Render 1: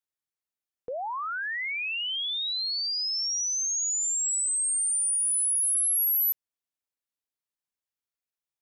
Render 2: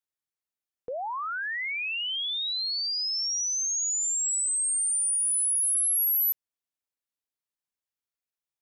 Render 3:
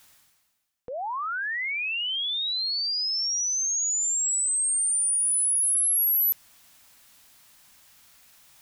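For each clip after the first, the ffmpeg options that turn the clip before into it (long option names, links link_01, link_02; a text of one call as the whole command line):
ffmpeg -i in.wav -af anull out.wav
ffmpeg -i in.wav -af "equalizer=frequency=420:width_type=o:width=0.76:gain=-10,areverse,acompressor=mode=upward:threshold=-31dB:ratio=2.5,areverse,volume=2dB" out.wav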